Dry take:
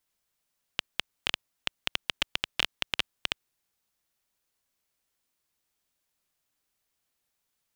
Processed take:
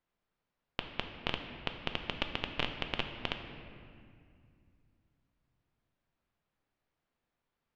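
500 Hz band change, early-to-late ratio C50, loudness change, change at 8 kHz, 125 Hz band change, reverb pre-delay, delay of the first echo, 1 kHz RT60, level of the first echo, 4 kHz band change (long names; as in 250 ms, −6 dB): +4.0 dB, 7.0 dB, −5.5 dB, −19.0 dB, +6.0 dB, 4 ms, no echo audible, 2.1 s, no echo audible, −7.0 dB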